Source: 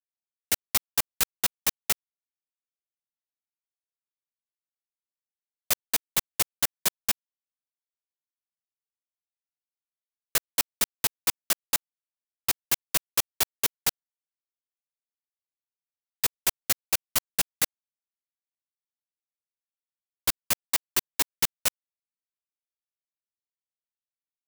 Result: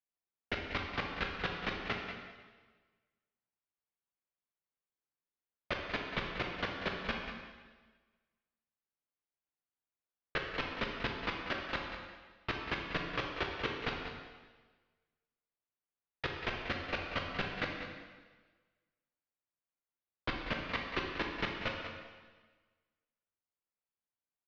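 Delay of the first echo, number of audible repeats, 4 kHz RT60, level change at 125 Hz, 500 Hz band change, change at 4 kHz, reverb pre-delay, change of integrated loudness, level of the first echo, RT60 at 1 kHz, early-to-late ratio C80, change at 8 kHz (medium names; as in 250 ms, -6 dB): 188 ms, 1, 1.3 s, +2.5 dB, +1.5 dB, -9.5 dB, 8 ms, -11.5 dB, -9.5 dB, 1.3 s, 3.5 dB, -36.0 dB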